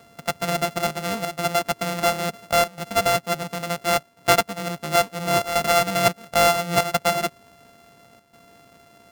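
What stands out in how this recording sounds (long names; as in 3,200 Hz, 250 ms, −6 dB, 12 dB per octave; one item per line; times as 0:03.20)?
a buzz of ramps at a fixed pitch in blocks of 64 samples
chopped level 0.72 Hz, depth 65%, duty 90%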